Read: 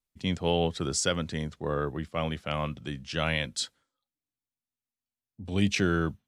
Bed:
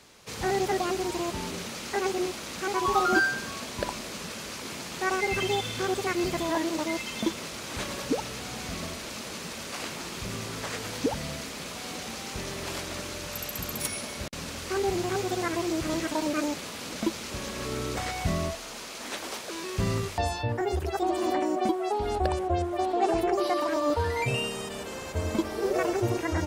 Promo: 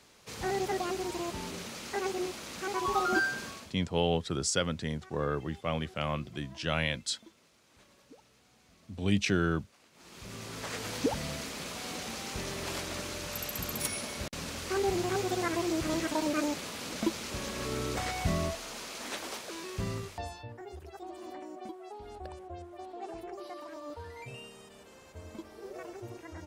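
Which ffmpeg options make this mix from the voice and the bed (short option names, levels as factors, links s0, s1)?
-filter_complex "[0:a]adelay=3500,volume=0.794[s0];[1:a]volume=10.6,afade=t=out:st=3.45:d=0.31:silence=0.0749894,afade=t=in:st=9.92:d=0.99:silence=0.0530884,afade=t=out:st=18.99:d=1.54:silence=0.177828[s1];[s0][s1]amix=inputs=2:normalize=0"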